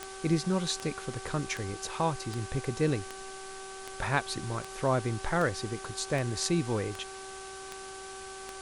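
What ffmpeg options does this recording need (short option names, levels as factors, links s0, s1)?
-af "adeclick=t=4,bandreject=f=384.4:t=h:w=4,bandreject=f=768.8:t=h:w=4,bandreject=f=1153.2:t=h:w=4,bandreject=f=1537.6:t=h:w=4,afwtdn=0.0056"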